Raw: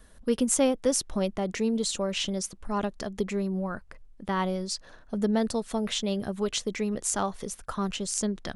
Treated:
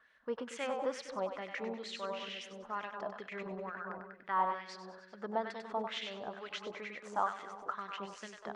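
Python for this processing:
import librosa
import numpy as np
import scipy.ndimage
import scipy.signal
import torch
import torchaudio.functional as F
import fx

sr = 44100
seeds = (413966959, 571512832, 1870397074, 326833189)

y = fx.peak_eq(x, sr, hz=10000.0, db=-14.5, octaves=0.96)
y = fx.echo_split(y, sr, split_hz=540.0, low_ms=231, high_ms=97, feedback_pct=52, wet_db=-5.0)
y = fx.filter_lfo_bandpass(y, sr, shape='sine', hz=2.2, low_hz=870.0, high_hz=2200.0, q=2.3)
y = fx.over_compress(y, sr, threshold_db=-46.0, ratio=-0.5, at=(3.28, 4.26), fade=0.02)
y = y * librosa.db_to_amplitude(1.0)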